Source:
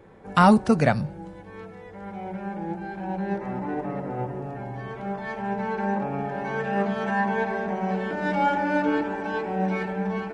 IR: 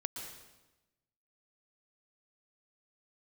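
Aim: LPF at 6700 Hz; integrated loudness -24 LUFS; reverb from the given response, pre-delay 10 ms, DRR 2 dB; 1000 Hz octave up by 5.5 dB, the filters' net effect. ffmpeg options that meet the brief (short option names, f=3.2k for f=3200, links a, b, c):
-filter_complex "[0:a]lowpass=6.7k,equalizer=f=1k:t=o:g=7,asplit=2[a][b];[1:a]atrim=start_sample=2205,adelay=10[c];[b][c]afir=irnorm=-1:irlink=0,volume=-2dB[d];[a][d]amix=inputs=2:normalize=0,volume=-3dB"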